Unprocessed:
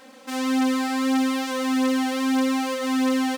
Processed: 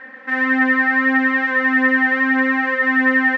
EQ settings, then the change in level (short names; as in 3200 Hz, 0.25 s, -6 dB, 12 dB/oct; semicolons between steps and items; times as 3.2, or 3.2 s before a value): synth low-pass 1800 Hz, resonance Q 14; +1.5 dB